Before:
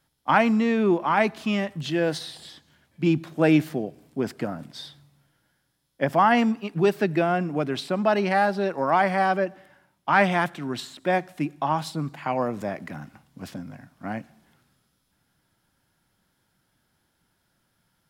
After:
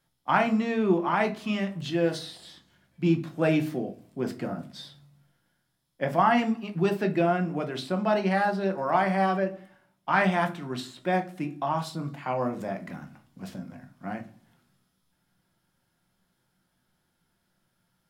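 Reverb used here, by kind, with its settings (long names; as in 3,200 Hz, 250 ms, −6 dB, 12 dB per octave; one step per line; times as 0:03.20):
rectangular room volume 180 cubic metres, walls furnished, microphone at 0.92 metres
level −5 dB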